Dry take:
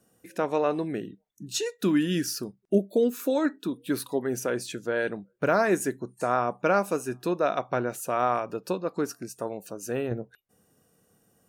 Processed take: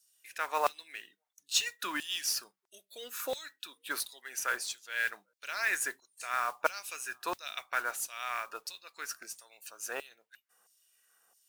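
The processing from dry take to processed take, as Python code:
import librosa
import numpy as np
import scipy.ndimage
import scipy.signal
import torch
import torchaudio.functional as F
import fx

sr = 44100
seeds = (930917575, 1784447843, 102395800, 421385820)

y = fx.filter_lfo_highpass(x, sr, shape='saw_down', hz=1.5, low_hz=880.0, high_hz=5000.0, q=1.8)
y = fx.mod_noise(y, sr, seeds[0], snr_db=18)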